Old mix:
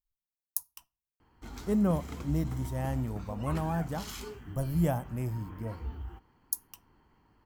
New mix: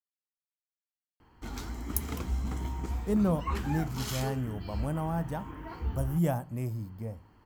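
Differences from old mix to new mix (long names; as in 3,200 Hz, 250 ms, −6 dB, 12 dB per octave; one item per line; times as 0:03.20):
speech: entry +1.40 s
background +5.0 dB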